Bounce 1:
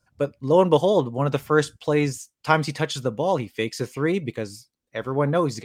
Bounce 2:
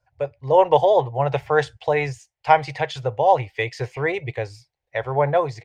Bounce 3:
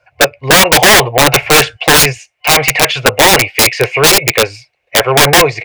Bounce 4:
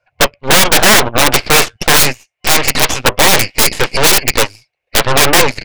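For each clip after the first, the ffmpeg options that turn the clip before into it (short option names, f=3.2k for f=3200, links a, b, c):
-af "firequalizer=gain_entry='entry(130,0);entry(190,-28);entry(390,-6);entry(780,8);entry(1200,-9);entry(1900,3);entry(3300,-5);entry(11000,-22)':delay=0.05:min_phase=1,dynaudnorm=f=120:g=7:m=5dB"
-filter_complex "[0:a]asplit=2[a][b];[b]highpass=f=720:p=1,volume=22dB,asoftclip=type=tanh:threshold=-2dB[c];[a][c]amix=inputs=2:normalize=0,lowpass=f=1.8k:p=1,volume=-6dB,superequalizer=9b=0.501:12b=2.82,aeval=exprs='(mod(2.66*val(0)+1,2)-1)/2.66':c=same,volume=7dB"
-af "aeval=exprs='0.891*(cos(1*acos(clip(val(0)/0.891,-1,1)))-cos(1*PI/2))+0.178*(cos(3*acos(clip(val(0)/0.891,-1,1)))-cos(3*PI/2))+0.316*(cos(6*acos(clip(val(0)/0.891,-1,1)))-cos(6*PI/2))':c=same,volume=-2dB"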